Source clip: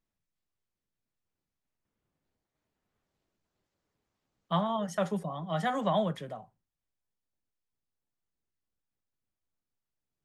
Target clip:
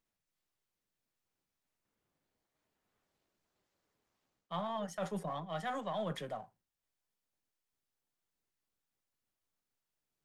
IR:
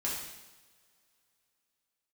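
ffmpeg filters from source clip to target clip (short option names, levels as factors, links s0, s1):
-af "aeval=exprs='if(lt(val(0),0),0.708*val(0),val(0))':c=same,lowshelf=f=230:g=-8,areverse,acompressor=threshold=0.0126:ratio=6,areverse,volume=1.41"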